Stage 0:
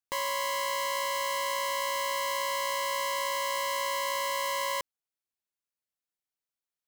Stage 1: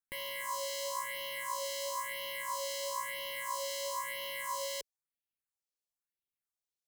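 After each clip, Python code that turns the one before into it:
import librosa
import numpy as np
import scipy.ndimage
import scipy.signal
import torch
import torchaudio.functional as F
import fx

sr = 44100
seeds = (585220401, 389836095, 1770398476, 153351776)

y = fx.phaser_stages(x, sr, stages=4, low_hz=180.0, high_hz=1300.0, hz=1.0, feedback_pct=45)
y = y * 10.0 ** (-4.0 / 20.0)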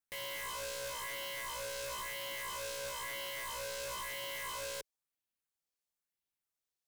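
y = 10.0 ** (-37.5 / 20.0) * (np.abs((x / 10.0 ** (-37.5 / 20.0) + 3.0) % 4.0 - 2.0) - 1.0)
y = y * 10.0 ** (1.0 / 20.0)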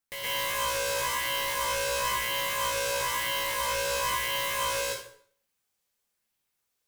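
y = fx.rev_plate(x, sr, seeds[0], rt60_s=0.56, hf_ratio=0.85, predelay_ms=105, drr_db=-6.0)
y = y * 10.0 ** (5.0 / 20.0)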